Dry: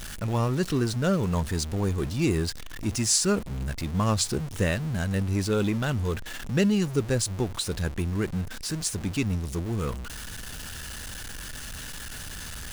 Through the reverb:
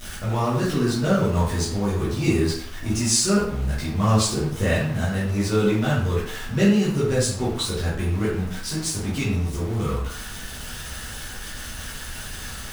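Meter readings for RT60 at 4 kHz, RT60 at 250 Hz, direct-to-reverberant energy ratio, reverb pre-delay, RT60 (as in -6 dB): 0.50 s, 0.60 s, -9.5 dB, 8 ms, 0.65 s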